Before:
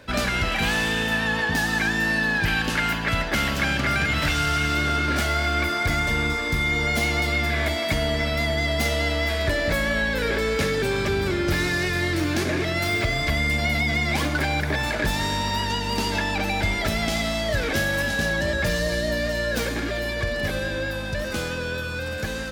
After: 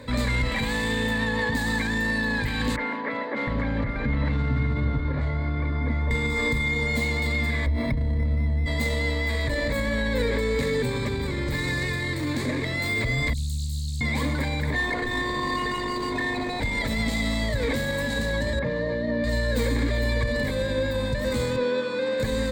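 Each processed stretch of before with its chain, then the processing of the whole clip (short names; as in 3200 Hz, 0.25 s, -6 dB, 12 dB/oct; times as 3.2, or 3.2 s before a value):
2.76–6.11 tape spacing loss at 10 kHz 41 dB + three bands offset in time mids, highs, lows 30/710 ms, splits 280/2600 Hz
7.66–8.66 RIAA curve playback + decimation joined by straight lines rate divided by 6×
13.33–14.01 inverse Chebyshev band-stop 270–2400 Hz, stop band 50 dB + low shelf 190 Hz -8.5 dB + Doppler distortion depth 0.83 ms
14.74–16.6 low shelf 260 Hz +11.5 dB + robotiser 359 Hz + overdrive pedal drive 34 dB, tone 1400 Hz, clips at -5 dBFS
18.59–19.24 HPF 160 Hz + tape spacing loss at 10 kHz 40 dB
21.56–22.2 HPF 230 Hz 24 dB/oct + air absorption 110 m
whole clip: low shelf 430 Hz +7.5 dB; limiter -19 dBFS; ripple EQ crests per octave 1, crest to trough 12 dB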